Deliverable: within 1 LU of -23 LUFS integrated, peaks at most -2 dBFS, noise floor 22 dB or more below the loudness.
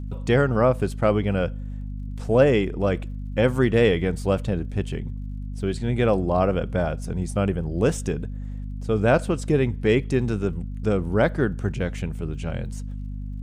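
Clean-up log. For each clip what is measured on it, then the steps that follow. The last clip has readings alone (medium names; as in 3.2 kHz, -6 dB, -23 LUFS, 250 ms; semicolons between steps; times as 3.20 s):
tick rate 43 per s; hum 50 Hz; highest harmonic 250 Hz; hum level -29 dBFS; loudness -23.5 LUFS; peak level -5.0 dBFS; loudness target -23.0 LUFS
-> de-click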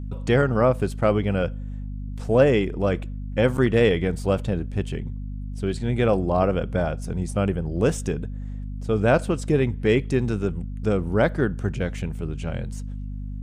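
tick rate 0.22 per s; hum 50 Hz; highest harmonic 250 Hz; hum level -29 dBFS
-> de-hum 50 Hz, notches 5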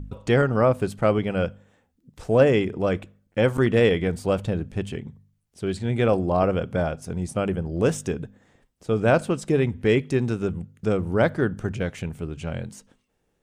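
hum not found; loudness -24.0 LUFS; peak level -4.5 dBFS; loudness target -23.0 LUFS
-> trim +1 dB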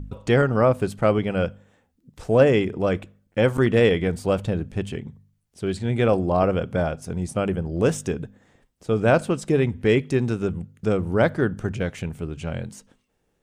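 loudness -23.0 LUFS; peak level -3.5 dBFS; noise floor -70 dBFS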